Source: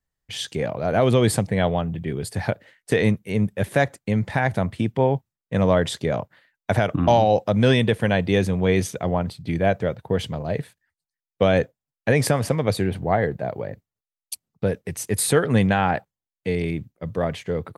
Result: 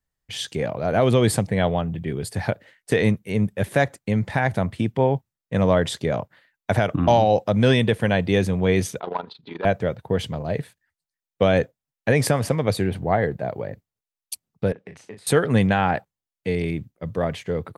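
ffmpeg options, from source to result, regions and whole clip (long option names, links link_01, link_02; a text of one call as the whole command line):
ffmpeg -i in.wav -filter_complex "[0:a]asettb=1/sr,asplit=3[link_01][link_02][link_03];[link_01]atrim=end=9.004[link_04];[link_02]atrim=start=9:end=9.65,asetpts=PTS-STARTPTS,afade=type=in:duration=0.004:curve=qsin,afade=type=out:start_time=0.646:duration=0.004:curve=qsin,asoftclip=type=hard:threshold=-16.5dB,tremolo=f=25:d=0.75,highpass=380,equalizer=frequency=420:width_type=q:width=4:gain=6,equalizer=frequency=600:width_type=q:width=4:gain=-6,equalizer=frequency=960:width_type=q:width=4:gain=9,equalizer=frequency=1400:width_type=q:width=4:gain=4,equalizer=frequency=2100:width_type=q:width=4:gain=-5,equalizer=frequency=3800:width_type=q:width=4:gain=8,lowpass=frequency=4100:width=0.5412,lowpass=frequency=4100:width=1.3066[link_05];[link_03]atrim=start=9.646[link_06];[link_04][link_05]acrossfade=duration=0.004:curve1=hsin:curve2=qsin[link_07];[link_07][link_06]acrossfade=duration=0.004:curve1=qsin:curve2=hsin,asettb=1/sr,asplit=3[link_08][link_09][link_10];[link_08]atrim=end=14.724[link_11];[link_09]atrim=start=14.72:end=15.27,asetpts=PTS-STARTPTS,afade=type=in:duration=0.004:curve=qsin,afade=type=out:start_time=0.546:duration=0.004:curve=qsin,acompressor=threshold=-34dB:ratio=8:attack=3.2:release=140:knee=1:detection=peak,highpass=140,lowpass=3300,asplit=2[link_12][link_13];[link_13]adelay=37,volume=-7dB[link_14];[link_12][link_14]amix=inputs=2:normalize=0,atrim=end_sample=24255[link_15];[link_10]atrim=start=15.266[link_16];[link_11][link_15]acrossfade=duration=0.004:curve1=hsin:curve2=qsin[link_17];[link_17][link_16]acrossfade=duration=0.004:curve1=qsin:curve2=hsin" out.wav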